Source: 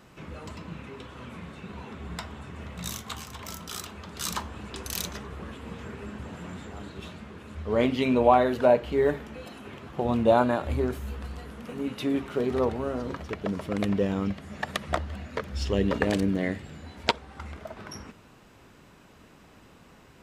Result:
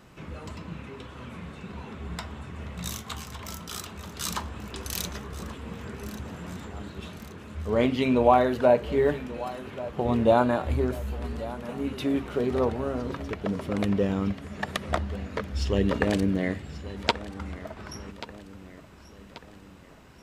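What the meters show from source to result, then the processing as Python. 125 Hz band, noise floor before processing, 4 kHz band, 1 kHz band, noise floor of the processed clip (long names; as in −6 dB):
+2.0 dB, −54 dBFS, 0.0 dB, 0.0 dB, −50 dBFS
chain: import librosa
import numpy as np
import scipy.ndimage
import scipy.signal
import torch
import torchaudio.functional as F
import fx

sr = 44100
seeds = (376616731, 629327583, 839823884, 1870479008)

y = fx.low_shelf(x, sr, hz=130.0, db=3.5)
y = fx.echo_feedback(y, sr, ms=1135, feedback_pct=50, wet_db=-16.0)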